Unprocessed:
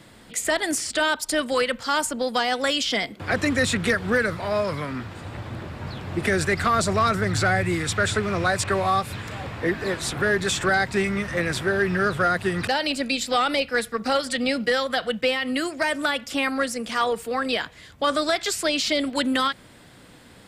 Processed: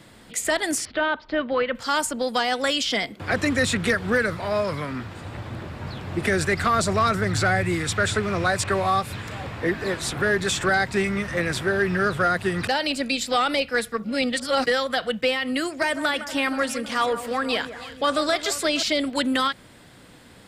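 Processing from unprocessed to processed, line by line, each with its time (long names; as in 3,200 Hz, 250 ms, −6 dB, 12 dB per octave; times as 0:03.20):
0:00.85–0:01.75: Bessel low-pass filter 2,200 Hz, order 8
0:14.04–0:14.66: reverse
0:15.65–0:18.83: delay that swaps between a low-pass and a high-pass 159 ms, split 1,900 Hz, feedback 73%, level −11.5 dB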